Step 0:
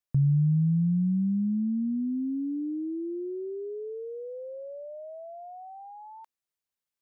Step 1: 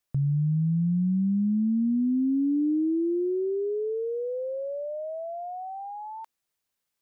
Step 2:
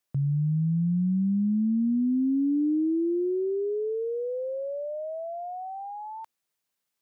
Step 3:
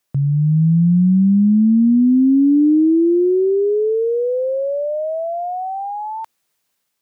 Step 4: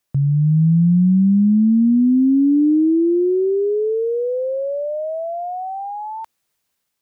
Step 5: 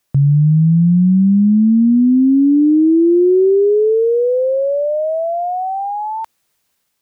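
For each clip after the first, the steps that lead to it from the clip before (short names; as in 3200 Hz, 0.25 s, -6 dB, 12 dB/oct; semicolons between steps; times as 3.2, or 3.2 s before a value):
limiter -28.5 dBFS, peak gain reduction 10.5 dB; gain +7.5 dB
HPF 99 Hz 12 dB/oct
AGC gain up to 3.5 dB; gain +8.5 dB
low shelf 77 Hz +11.5 dB; gain -2.5 dB
limiter -14 dBFS, peak gain reduction 4 dB; gain +6.5 dB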